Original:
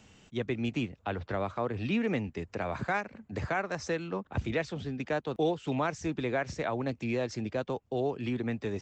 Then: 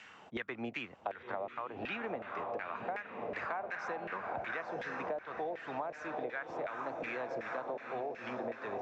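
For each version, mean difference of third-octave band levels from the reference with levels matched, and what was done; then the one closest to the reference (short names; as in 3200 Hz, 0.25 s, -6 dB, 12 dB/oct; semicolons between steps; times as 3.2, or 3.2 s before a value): 8.0 dB: diffused feedback echo 0.939 s, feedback 50%, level -5.5 dB; LFO band-pass saw down 2.7 Hz 560–2000 Hz; compressor 10:1, threshold -51 dBFS, peak gain reduction 21.5 dB; gain +15 dB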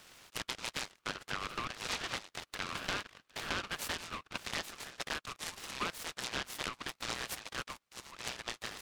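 15.5 dB: steep high-pass 1100 Hz 72 dB/oct; compressor 6:1, threshold -39 dBFS, peak gain reduction 9.5 dB; noise-modulated delay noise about 1200 Hz, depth 0.11 ms; gain +5.5 dB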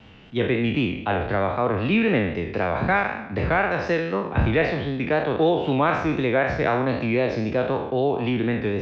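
5.5 dB: spectral trails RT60 0.84 s; LPF 3700 Hz 24 dB/oct; vibrato 3.9 Hz 50 cents; gain +8 dB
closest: third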